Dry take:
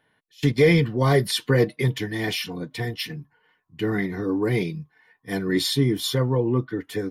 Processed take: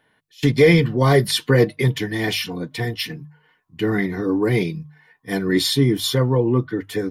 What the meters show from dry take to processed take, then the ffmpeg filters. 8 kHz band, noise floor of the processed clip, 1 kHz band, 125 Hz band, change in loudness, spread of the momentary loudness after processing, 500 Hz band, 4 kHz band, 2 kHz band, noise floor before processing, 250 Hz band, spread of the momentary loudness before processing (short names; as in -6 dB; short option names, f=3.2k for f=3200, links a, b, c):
+4.0 dB, -64 dBFS, +4.0 dB, +3.5 dB, +4.0 dB, 12 LU, +4.0 dB, +4.0 dB, +4.0 dB, -69 dBFS, +4.0 dB, 12 LU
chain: -af "bandreject=f=50:t=h:w=6,bandreject=f=100:t=h:w=6,bandreject=f=150:t=h:w=6,volume=4dB"